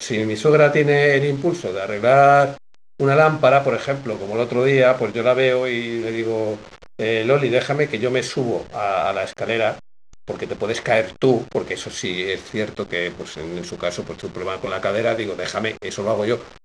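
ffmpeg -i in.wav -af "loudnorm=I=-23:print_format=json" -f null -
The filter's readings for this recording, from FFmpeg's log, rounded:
"input_i" : "-20.2",
"input_tp" : "-2.4",
"input_lra" : "7.1",
"input_thresh" : "-30.5",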